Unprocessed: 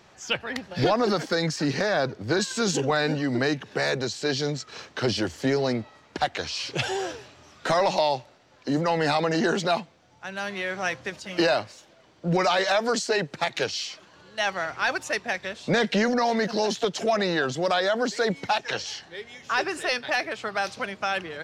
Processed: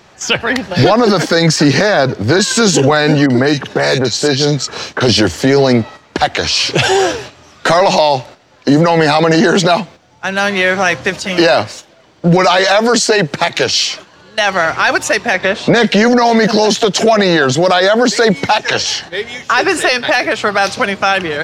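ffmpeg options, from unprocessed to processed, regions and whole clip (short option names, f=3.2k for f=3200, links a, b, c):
-filter_complex "[0:a]asettb=1/sr,asplit=3[a][b][c];[a]atrim=end=3.264[d];[b]atrim=start=3.26:end=5.09,asetpts=PTS-STARTPTS,afade=t=in:d=0.004:c=qsin,afade=t=out:st=1.826:d=0.004:c=qsin,acompressor=threshold=-28dB:ratio=2:attack=3.2:release=140:knee=1:detection=peak,acrossover=split=2000[e][f];[f]adelay=40[g];[e][g]amix=inputs=2:normalize=0,atrim=end_sample=80703[h];[c]atrim=start=5.086[i];[d][h]acrossfade=d=0.004:c1=hsin:c2=qsin[j];[j][i]acrossfade=d=0.004:c1=qsin:c2=hsin,asettb=1/sr,asplit=3[k][l][m];[k]atrim=end=15.344[n];[l]atrim=start=15.34:end=15.75,asetpts=PTS-STARTPTS,afade=t=in:d=0.004:c=qsin,afade=t=out:st=0.406:d=0.004:c=qsin,lowpass=f=2.1k:p=1,lowshelf=f=120:g=-10.5,acontrast=58[o];[m]atrim=start=15.746[p];[n][o]acrossfade=d=0.004:c1=hsin:c2=qsin[q];[q][p]acrossfade=d=0.004:c1=qsin:c2=hsin,agate=range=-8dB:threshold=-46dB:ratio=16:detection=peak,alimiter=level_in=19dB:limit=-1dB:release=50:level=0:latency=1,volume=-1dB"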